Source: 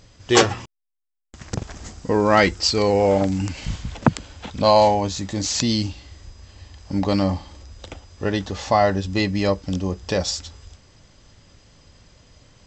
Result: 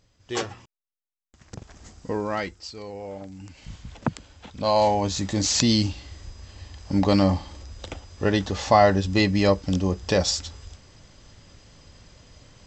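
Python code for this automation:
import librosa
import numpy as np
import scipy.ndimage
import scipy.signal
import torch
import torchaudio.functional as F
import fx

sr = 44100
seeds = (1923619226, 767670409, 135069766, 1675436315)

y = fx.gain(x, sr, db=fx.line((1.45, -13.5), (2.09, -7.0), (2.67, -19.0), (3.32, -19.0), (3.91, -9.0), (4.56, -9.0), (5.19, 1.0)))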